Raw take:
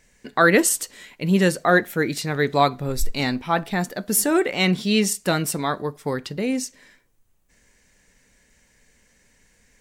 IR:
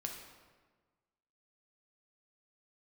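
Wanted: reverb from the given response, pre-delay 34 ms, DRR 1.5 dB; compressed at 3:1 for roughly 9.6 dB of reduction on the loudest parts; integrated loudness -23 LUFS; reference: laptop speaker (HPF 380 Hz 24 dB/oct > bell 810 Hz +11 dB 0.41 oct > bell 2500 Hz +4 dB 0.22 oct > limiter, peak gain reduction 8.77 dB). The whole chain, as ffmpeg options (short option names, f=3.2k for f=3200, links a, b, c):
-filter_complex "[0:a]acompressor=threshold=-25dB:ratio=3,asplit=2[a][b];[1:a]atrim=start_sample=2205,adelay=34[c];[b][c]afir=irnorm=-1:irlink=0,volume=-0.5dB[d];[a][d]amix=inputs=2:normalize=0,highpass=f=380:w=0.5412,highpass=f=380:w=1.3066,equalizer=f=810:t=o:w=0.41:g=11,equalizer=f=2.5k:t=o:w=0.22:g=4,volume=4dB,alimiter=limit=-11.5dB:level=0:latency=1"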